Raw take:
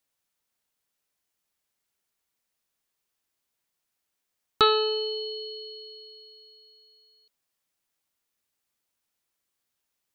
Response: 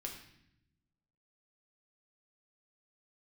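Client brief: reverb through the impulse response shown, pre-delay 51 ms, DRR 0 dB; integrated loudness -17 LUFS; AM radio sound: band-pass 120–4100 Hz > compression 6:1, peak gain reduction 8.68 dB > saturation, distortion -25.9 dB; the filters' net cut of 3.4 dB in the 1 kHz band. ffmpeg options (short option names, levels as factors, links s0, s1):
-filter_complex "[0:a]equalizer=f=1000:t=o:g=-5,asplit=2[s0][s1];[1:a]atrim=start_sample=2205,adelay=51[s2];[s1][s2]afir=irnorm=-1:irlink=0,volume=1.19[s3];[s0][s3]amix=inputs=2:normalize=0,highpass=120,lowpass=4100,acompressor=threshold=0.0631:ratio=6,asoftclip=threshold=0.2,volume=5.31"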